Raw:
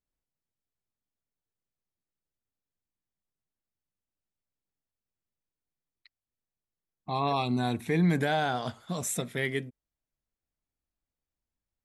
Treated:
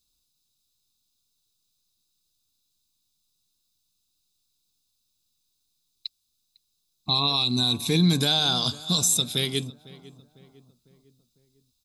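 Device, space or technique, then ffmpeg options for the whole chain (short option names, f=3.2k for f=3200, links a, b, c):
over-bright horn tweeter: -filter_complex "[0:a]highshelf=f=2.8k:t=q:w=3:g=12.5,aecho=1:1:0.8:0.44,alimiter=limit=-17.5dB:level=0:latency=1:release=318,asplit=2[a][b];[b]adelay=502,lowpass=f=1.8k:p=1,volume=-18.5dB,asplit=2[c][d];[d]adelay=502,lowpass=f=1.8k:p=1,volume=0.51,asplit=2[e][f];[f]adelay=502,lowpass=f=1.8k:p=1,volume=0.51,asplit=2[g][h];[h]adelay=502,lowpass=f=1.8k:p=1,volume=0.51[i];[a][c][e][g][i]amix=inputs=5:normalize=0,volume=6dB"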